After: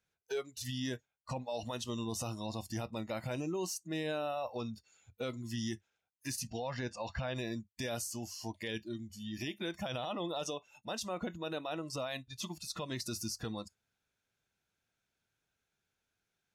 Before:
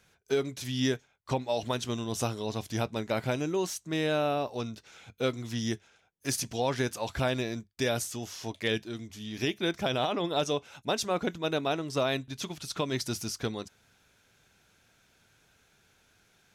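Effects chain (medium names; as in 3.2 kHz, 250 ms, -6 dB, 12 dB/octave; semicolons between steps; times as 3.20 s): 6.47–7.36 s: Bessel low-pass 4.9 kHz, order 4; spectral noise reduction 18 dB; peak limiter -27 dBFS, peak gain reduction 9.5 dB; trim -2 dB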